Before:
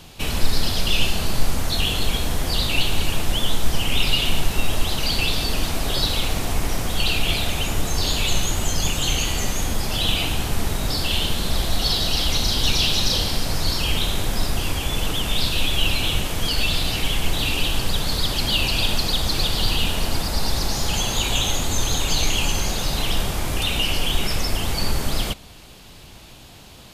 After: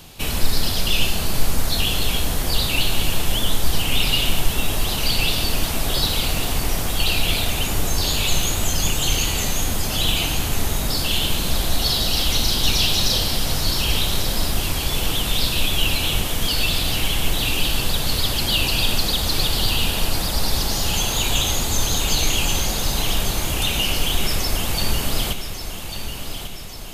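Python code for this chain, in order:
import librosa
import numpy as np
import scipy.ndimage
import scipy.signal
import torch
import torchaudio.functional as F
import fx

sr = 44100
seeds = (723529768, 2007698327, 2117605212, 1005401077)

p1 = fx.high_shelf(x, sr, hz=11000.0, db=10.0)
y = p1 + fx.echo_feedback(p1, sr, ms=1145, feedback_pct=54, wet_db=-9.5, dry=0)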